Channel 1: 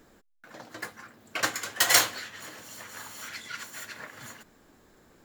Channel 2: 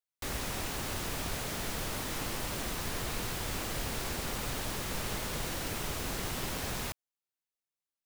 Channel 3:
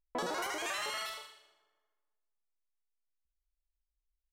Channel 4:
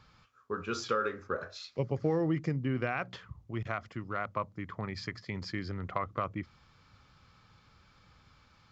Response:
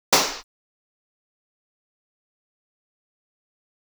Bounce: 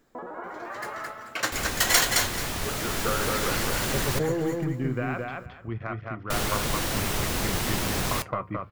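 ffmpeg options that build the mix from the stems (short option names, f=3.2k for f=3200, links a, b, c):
-filter_complex "[0:a]volume=-3dB,asplit=2[a][b];[b]volume=-3.5dB[c];[1:a]adelay=1300,volume=2dB,asplit=3[d][e][f];[d]atrim=end=4.19,asetpts=PTS-STARTPTS,afade=t=out:st=4.186:d=0.004:c=hsin[g];[e]atrim=start=4.19:end=6.3,asetpts=PTS-STARTPTS,volume=0[h];[f]atrim=start=6.3,asetpts=PTS-STARTPTS,afade=t=in:d=0.004:c=hsin[i];[g][h][i]concat=n=3:v=0:a=1[j];[2:a]lowpass=f=1.6k:w=0.5412,lowpass=f=1.6k:w=1.3066,volume=2dB,asplit=2[k][l];[l]volume=-6.5dB[m];[3:a]lowpass=2.3k,aeval=exprs='0.158*(cos(1*acos(clip(val(0)/0.158,-1,1)))-cos(1*PI/2))+0.00794*(cos(4*acos(clip(val(0)/0.158,-1,1)))-cos(4*PI/2))':c=same,adelay=2150,volume=-4dB,asplit=2[n][o];[o]volume=-3dB[p];[c][m][p]amix=inputs=3:normalize=0,aecho=0:1:217|434|651:1|0.21|0.0441[q];[a][j][k][n][q]amix=inputs=5:normalize=0,dynaudnorm=f=330:g=5:m=10.5dB,flanger=delay=7.4:depth=2:regen=-74:speed=0.99:shape=triangular"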